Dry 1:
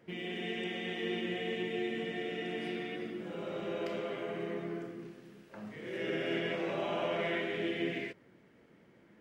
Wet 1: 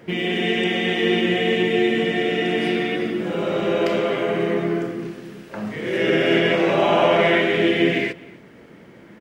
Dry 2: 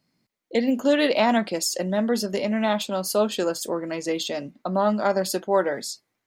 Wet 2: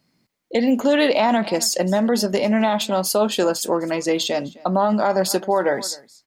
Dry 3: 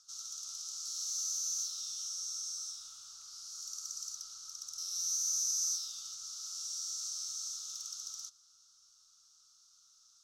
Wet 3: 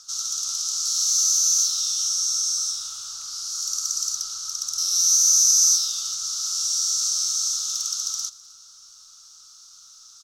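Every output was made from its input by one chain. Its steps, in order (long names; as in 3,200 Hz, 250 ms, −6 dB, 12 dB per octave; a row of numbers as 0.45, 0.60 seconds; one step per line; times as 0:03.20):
dynamic equaliser 850 Hz, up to +5 dB, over −41 dBFS, Q 2.5
single-tap delay 258 ms −23 dB
boost into a limiter +14 dB
loudness normalisation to −20 LKFS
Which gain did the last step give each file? +2.5, −8.5, +2.5 decibels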